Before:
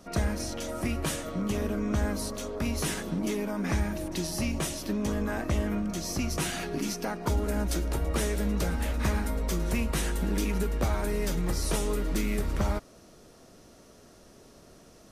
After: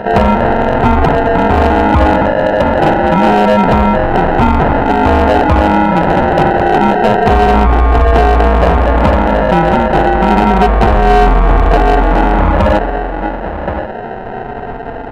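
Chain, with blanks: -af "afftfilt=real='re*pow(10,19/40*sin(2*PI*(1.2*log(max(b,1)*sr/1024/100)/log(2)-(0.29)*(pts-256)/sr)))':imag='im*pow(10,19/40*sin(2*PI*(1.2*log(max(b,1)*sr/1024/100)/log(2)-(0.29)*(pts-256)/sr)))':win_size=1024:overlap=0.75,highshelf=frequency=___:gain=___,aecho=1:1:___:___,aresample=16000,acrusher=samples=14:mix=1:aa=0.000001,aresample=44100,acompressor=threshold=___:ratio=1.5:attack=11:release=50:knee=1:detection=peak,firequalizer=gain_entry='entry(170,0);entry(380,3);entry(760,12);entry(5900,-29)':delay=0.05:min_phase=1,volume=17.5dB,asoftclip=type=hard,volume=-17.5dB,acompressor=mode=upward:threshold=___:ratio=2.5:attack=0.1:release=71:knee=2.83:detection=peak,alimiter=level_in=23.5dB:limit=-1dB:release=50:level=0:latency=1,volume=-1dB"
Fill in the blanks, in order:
5400, -2.5, 1075, 0.126, -28dB, -42dB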